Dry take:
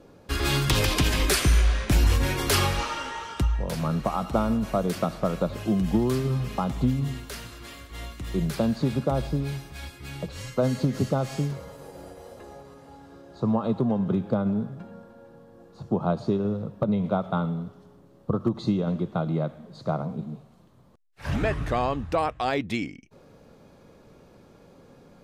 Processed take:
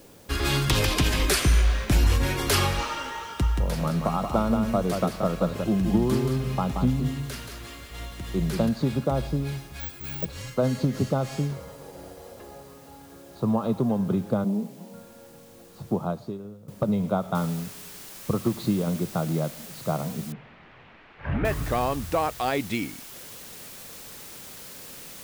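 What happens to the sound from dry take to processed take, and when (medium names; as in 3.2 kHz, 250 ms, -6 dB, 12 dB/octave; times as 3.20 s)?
3.24–8.69 s: delay 178 ms -5.5 dB
9.80–10.25 s: careless resampling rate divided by 2×, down none, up zero stuff
14.44–14.94 s: elliptic band-pass 180–1000 Hz
15.90–16.68 s: fade out quadratic, to -17 dB
17.35 s: noise floor step -56 dB -43 dB
20.32–21.45 s: low-pass 2.5 kHz 24 dB/octave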